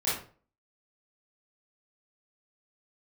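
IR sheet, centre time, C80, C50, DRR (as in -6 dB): 47 ms, 9.0 dB, 2.0 dB, -11.0 dB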